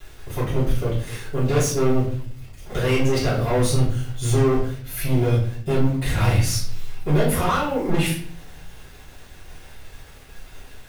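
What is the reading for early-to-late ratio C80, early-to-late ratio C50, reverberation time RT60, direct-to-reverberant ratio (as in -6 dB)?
10.0 dB, 5.0 dB, 0.55 s, -8.5 dB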